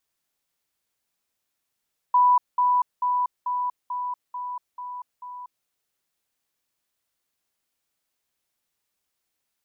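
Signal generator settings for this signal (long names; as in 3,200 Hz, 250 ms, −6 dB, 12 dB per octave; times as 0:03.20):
level staircase 989 Hz −14 dBFS, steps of −3 dB, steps 8, 0.24 s 0.20 s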